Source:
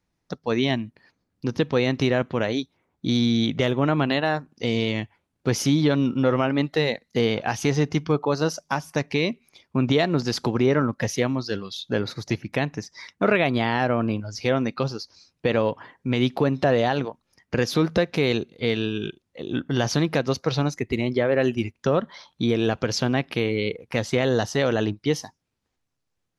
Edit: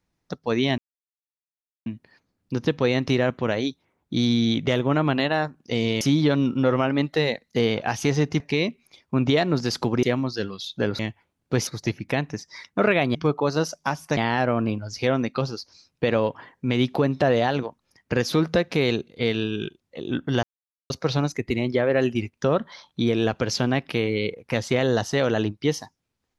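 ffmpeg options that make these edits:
-filter_complex "[0:a]asplit=11[a][b][c][d][e][f][g][h][i][j][k];[a]atrim=end=0.78,asetpts=PTS-STARTPTS,afade=t=out:st=0.776:d=0.004:c=hsin,apad=pad_dur=1.08[l];[b]atrim=start=0.78:end=4.932,asetpts=PTS-STARTPTS,afade=t=in:d=0.004:c=hsin[m];[c]atrim=start=5.608:end=8.002[n];[d]atrim=start=9.018:end=10.652[o];[e]atrim=start=11.148:end=12.112[p];[f]atrim=start=4.928:end=5.612[q];[g]atrim=start=12.108:end=13.592[r];[h]atrim=start=7.998:end=9.022[s];[i]atrim=start=13.588:end=19.85,asetpts=PTS-STARTPTS,afade=t=out:st=6.258:d=0.004:c=hsin[t];[j]atrim=start=19.85:end=20.32,asetpts=PTS-STARTPTS,volume=0[u];[k]atrim=start=20.32,asetpts=PTS-STARTPTS,afade=t=in:d=0.004:c=hsin[v];[l][m]concat=n=2:v=0:a=1[w];[w][n]acrossfade=d=0.004:c1=hsin:c2=hsin[x];[x][o]acrossfade=d=0.004:c1=hsin:c2=hsin[y];[y][p]acrossfade=d=0.004:c1=hsin:c2=hsin[z];[z][q]acrossfade=d=0.004:c1=hsin:c2=hsin[aa];[aa][r]acrossfade=d=0.004:c1=hsin:c2=hsin[ab];[ab][s]acrossfade=d=0.004:c1=hsin:c2=hsin[ac];[t][u][v]concat=n=3:v=0:a=1[ad];[ac][ad]acrossfade=d=0.004:c1=hsin:c2=hsin"

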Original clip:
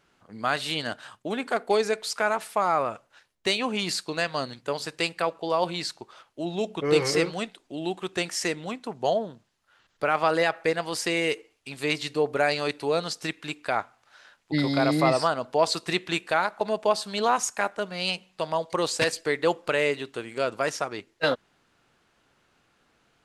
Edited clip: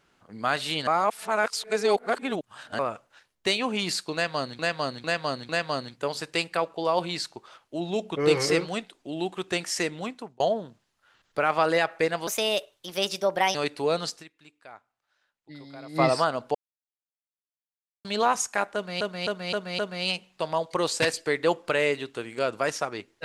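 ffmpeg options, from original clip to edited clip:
-filter_complex "[0:a]asplit=17[a][b][c][d][e][f][g][h][i][j][k][l][m][n][o][p][q];[a]atrim=end=0.872[r];[b]atrim=start=0.868:end=2.792,asetpts=PTS-STARTPTS,areverse[s];[c]atrim=start=2.788:end=4.592[t];[d]atrim=start=4.138:end=4.592[u];[e]atrim=start=4.138:end=4.592[v];[f]atrim=start=4.138:end=9.05,asetpts=PTS-STARTPTS,afade=t=out:st=4.632:d=0.28[w];[g]atrim=start=9.05:end=10.924,asetpts=PTS-STARTPTS,afade=t=in:d=0.004:c=hsin[x];[h]atrim=start=10.92:end=12.58,asetpts=PTS-STARTPTS,asetrate=57330,aresample=44100,atrim=end_sample=56312,asetpts=PTS-STARTPTS[y];[i]atrim=start=12.576:end=13.48,asetpts=PTS-STARTPTS,afade=t=out:st=0.624:d=0.28:c=exp:silence=0.1[z];[j]atrim=start=13.48:end=14.75,asetpts=PTS-STARTPTS,volume=-20dB[aa];[k]atrim=start=14.75:end=15.58,asetpts=PTS-STARTPTS,afade=t=in:d=0.28:c=exp:silence=0.1,afade=t=out:st=0.826:d=0.004:c=hsin[ab];[l]atrim=start=15.58:end=17.08,asetpts=PTS-STARTPTS,volume=0[ac];[m]atrim=start=17.08:end=18.042,asetpts=PTS-STARTPTS,afade=t=in:d=0.004:c=hsin[ad];[n]atrim=start=17.778:end=18.042[ae];[o]atrim=start=17.778:end=18.042[af];[p]atrim=start=17.778:end=18.042[ag];[q]atrim=start=17.778[ah];[r][s]acrossfade=d=0.004:c1=hsin:c2=hsin[ai];[ai][t]acrossfade=d=0.004:c1=hsin:c2=hsin[aj];[aj][u]acrossfade=d=0.004:c1=hsin:c2=hsin[ak];[ak][v]acrossfade=d=0.004:c1=hsin:c2=hsin[al];[w][x]concat=n=2:v=0:a=1[am];[al][am]acrossfade=d=0.004:c1=hsin:c2=hsin[an];[an][y]acrossfade=d=0.004:c1=hsin:c2=hsin[ao];[z][aa][ab][ac][ad]concat=n=5:v=0:a=1[ap];[ao][ap]acrossfade=d=0.004:c1=hsin:c2=hsin[aq];[aq][ae]acrossfade=d=0.004:c1=hsin:c2=hsin[ar];[ar][af]acrossfade=d=0.004:c1=hsin:c2=hsin[as];[as][ag]acrossfade=d=0.004:c1=hsin:c2=hsin[at];[at][ah]acrossfade=d=0.004:c1=hsin:c2=hsin"

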